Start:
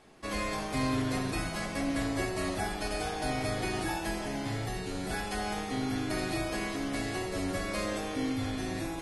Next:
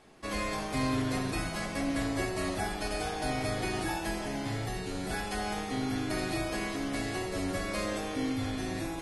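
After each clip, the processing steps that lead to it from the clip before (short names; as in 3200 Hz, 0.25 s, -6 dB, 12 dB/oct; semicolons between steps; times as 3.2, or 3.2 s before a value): nothing audible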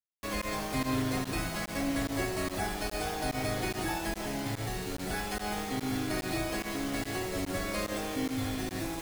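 pump 145 bpm, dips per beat 1, -21 dB, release 79 ms; bit-crush 7-bit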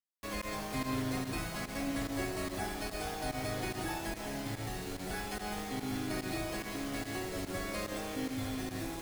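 split-band echo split 940 Hz, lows 0.328 s, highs 0.452 s, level -13.5 dB; gain -4.5 dB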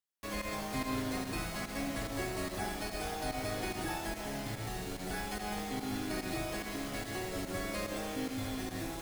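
reverb, pre-delay 39 ms, DRR 11 dB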